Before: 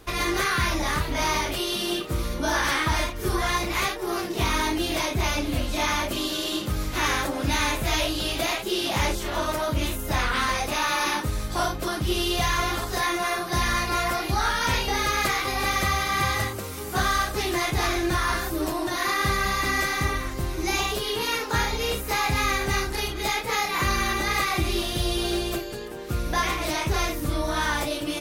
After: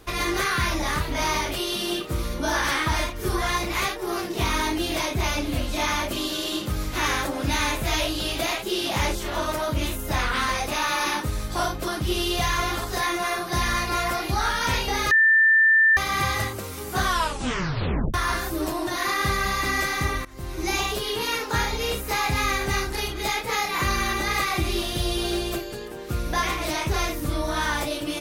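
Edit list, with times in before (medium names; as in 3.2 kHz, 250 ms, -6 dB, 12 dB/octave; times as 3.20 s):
15.11–15.97 s: bleep 1.78 kHz -13.5 dBFS
17.03 s: tape stop 1.11 s
20.25–20.65 s: fade in linear, from -21 dB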